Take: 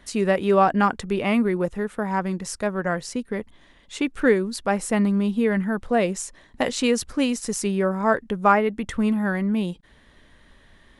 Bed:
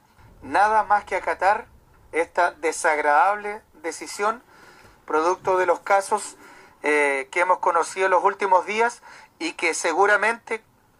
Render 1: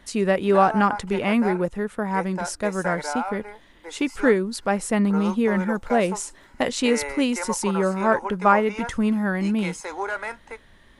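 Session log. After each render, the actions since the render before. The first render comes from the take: add bed -11 dB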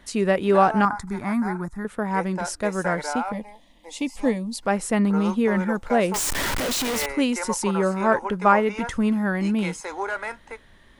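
0.85–1.85 s: static phaser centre 1.2 kHz, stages 4; 3.32–4.63 s: static phaser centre 390 Hz, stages 6; 6.14–7.06 s: one-bit comparator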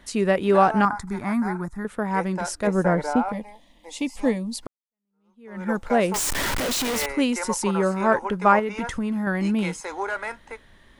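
2.67–3.29 s: tilt shelf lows +7 dB, about 1.1 kHz; 4.67–5.70 s: fade in exponential; 8.59–9.27 s: compression, threshold -22 dBFS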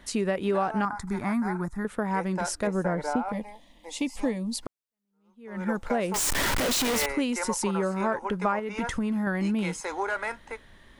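compression 4:1, threshold -24 dBFS, peak gain reduction 11.5 dB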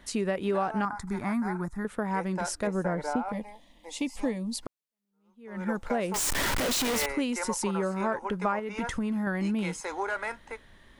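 trim -2 dB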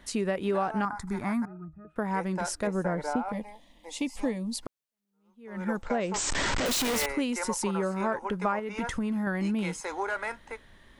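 1.45–1.96 s: pitch-class resonator D#, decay 0.16 s; 5.82–6.66 s: brick-wall FIR low-pass 8.3 kHz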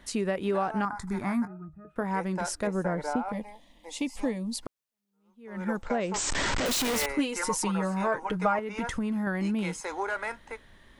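0.98–2.04 s: doubling 21 ms -12 dB; 7.18–8.59 s: comb 6.4 ms, depth 80%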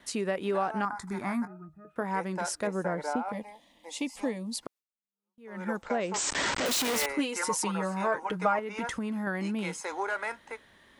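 high-pass 240 Hz 6 dB/octave; gate with hold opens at -56 dBFS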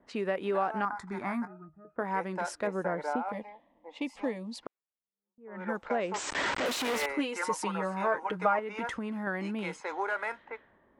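level-controlled noise filter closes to 670 Hz, open at -29.5 dBFS; tone controls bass -5 dB, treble -10 dB

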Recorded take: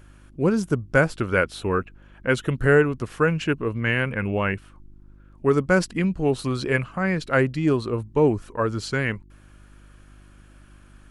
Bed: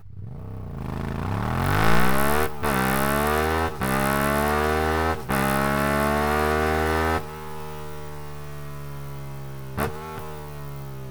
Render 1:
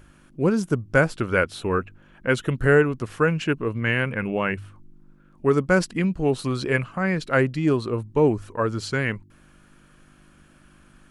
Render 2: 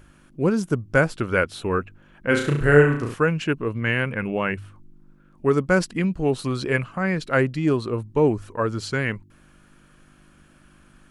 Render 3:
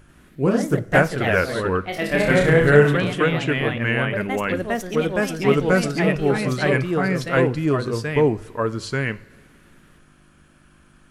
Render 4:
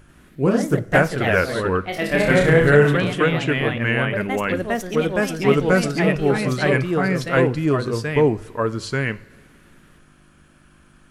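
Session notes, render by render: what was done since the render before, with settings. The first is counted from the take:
de-hum 50 Hz, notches 2
2.27–3.14 s: flutter echo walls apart 5.9 m, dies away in 0.53 s
ever faster or slower copies 88 ms, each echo +2 st, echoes 3; two-slope reverb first 0.34 s, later 2.4 s, from -18 dB, DRR 13 dB
trim +1 dB; peak limiter -3 dBFS, peak gain reduction 2.5 dB

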